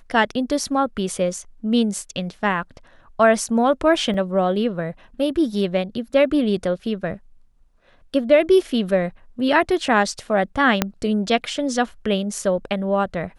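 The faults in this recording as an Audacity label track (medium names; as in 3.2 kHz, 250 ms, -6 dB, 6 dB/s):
4.140000	4.140000	dropout 2.8 ms
10.820000	10.820000	pop -2 dBFS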